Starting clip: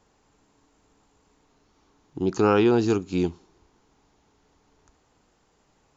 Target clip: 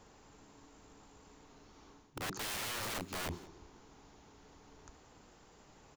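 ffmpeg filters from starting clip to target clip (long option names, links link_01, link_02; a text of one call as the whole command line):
ffmpeg -i in.wav -filter_complex "[0:a]aeval=exprs='(mod(18.8*val(0)+1,2)-1)/18.8':channel_layout=same,areverse,acompressor=threshold=-43dB:ratio=8,areverse,asplit=2[link_01][link_02];[link_02]adelay=180.8,volume=-20dB,highshelf=frequency=4000:gain=-4.07[link_03];[link_01][link_03]amix=inputs=2:normalize=0,volume=4.5dB" out.wav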